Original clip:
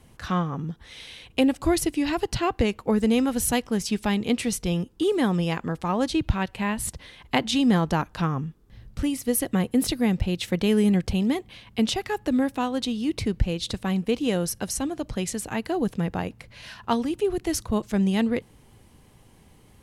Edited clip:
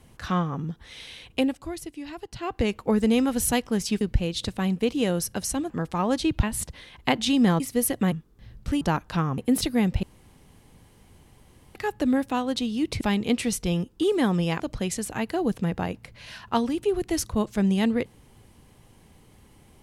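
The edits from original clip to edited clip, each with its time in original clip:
1.28–2.73 s: dip -12.5 dB, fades 0.38 s linear
4.01–5.60 s: swap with 13.27–14.96 s
6.33–6.69 s: delete
7.86–8.43 s: swap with 9.12–9.64 s
10.29–12.01 s: room tone

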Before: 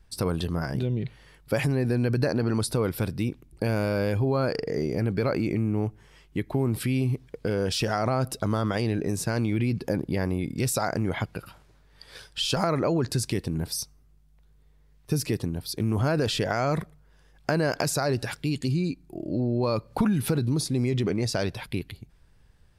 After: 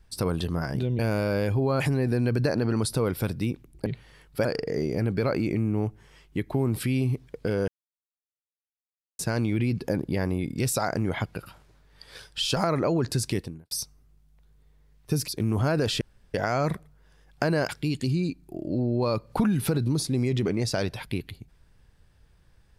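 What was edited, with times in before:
0.99–1.58 s: swap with 3.64–4.45 s
7.68–9.19 s: mute
13.38–13.71 s: fade out quadratic
15.28–15.68 s: delete
16.41 s: insert room tone 0.33 s
17.76–18.30 s: delete

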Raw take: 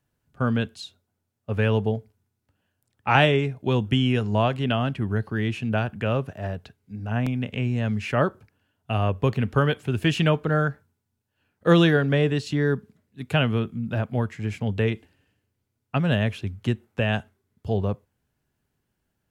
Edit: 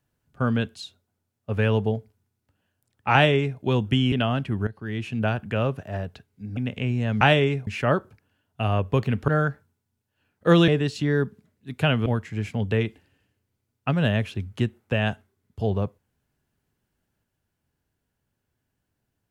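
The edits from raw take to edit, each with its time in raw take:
3.13–3.59 s: copy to 7.97 s
4.12–4.62 s: delete
5.17–5.71 s: fade in linear, from -14.5 dB
7.07–7.33 s: delete
9.58–10.48 s: delete
11.88–12.19 s: delete
13.57–14.13 s: delete

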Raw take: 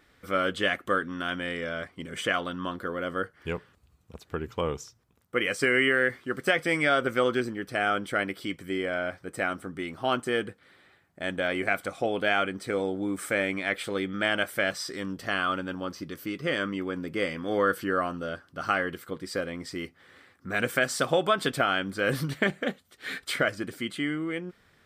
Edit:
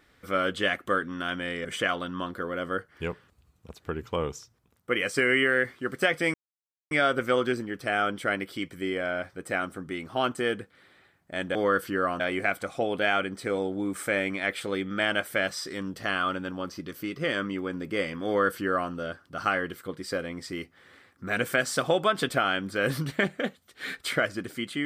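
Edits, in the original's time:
1.65–2.10 s: delete
6.79 s: insert silence 0.57 s
17.49–18.14 s: copy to 11.43 s

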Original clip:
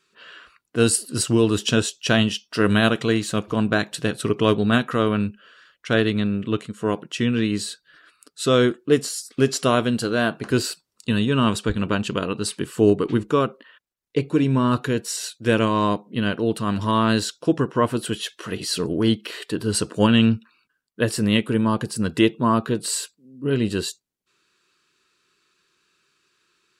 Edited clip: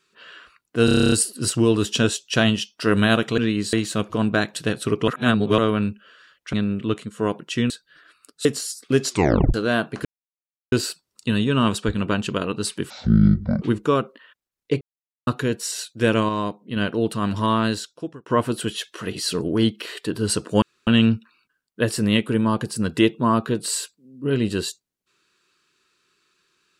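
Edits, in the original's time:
0.85 s: stutter 0.03 s, 10 plays
4.46–4.96 s: reverse
5.91–6.16 s: delete
7.33–7.68 s: move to 3.11 s
8.43–8.93 s: delete
9.56 s: tape stop 0.46 s
10.53 s: insert silence 0.67 s
12.71–13.07 s: speed 50%
14.26–14.72 s: mute
15.74–16.21 s: gain -4.5 dB
16.92–17.71 s: fade out
20.07 s: insert room tone 0.25 s

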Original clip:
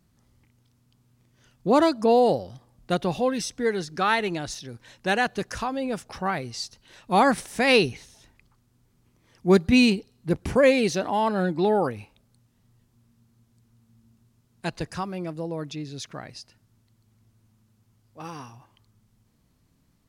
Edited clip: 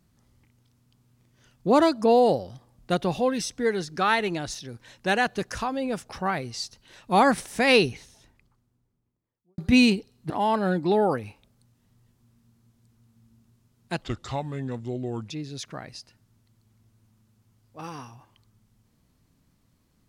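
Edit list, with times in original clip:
7.81–9.58 s: studio fade out
10.30–11.03 s: delete
14.75–15.71 s: speed 75%

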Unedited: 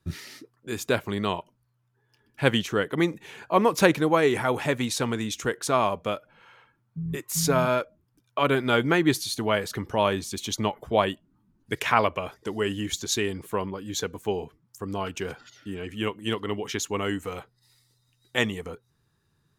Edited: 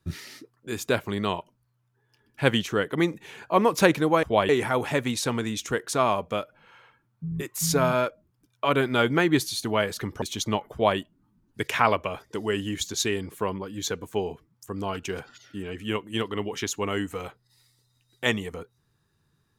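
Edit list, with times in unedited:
9.96–10.34 s: delete
10.84–11.10 s: copy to 4.23 s

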